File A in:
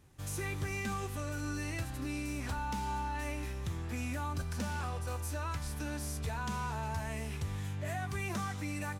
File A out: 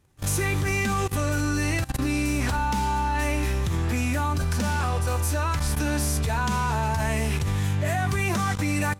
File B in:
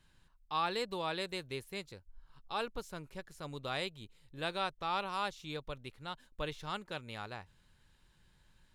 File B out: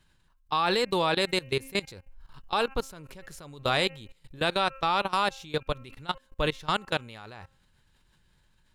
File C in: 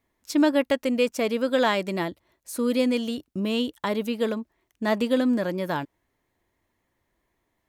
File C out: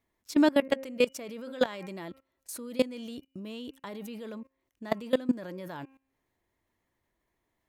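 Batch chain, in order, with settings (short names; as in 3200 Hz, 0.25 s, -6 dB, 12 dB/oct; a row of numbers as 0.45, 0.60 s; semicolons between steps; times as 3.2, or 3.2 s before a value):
de-hum 267.4 Hz, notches 11; level quantiser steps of 20 dB; normalise peaks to -12 dBFS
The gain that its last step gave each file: +15.5, +15.0, 0.0 dB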